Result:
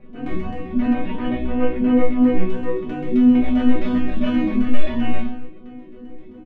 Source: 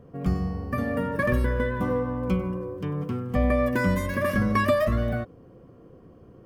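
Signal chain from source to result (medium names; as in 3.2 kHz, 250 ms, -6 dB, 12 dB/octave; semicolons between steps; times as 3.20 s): median filter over 41 samples; saturation -28.5 dBFS, distortion -8 dB; LFO low-pass square 7.6 Hz 290–2600 Hz; chord resonator B3 major, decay 0.74 s; 0.93–2.24 s: distance through air 230 m; simulated room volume 140 m³, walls furnished, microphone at 1.2 m; loudness maximiser +35 dB; endless flanger 3.2 ms +2.9 Hz; trim -2 dB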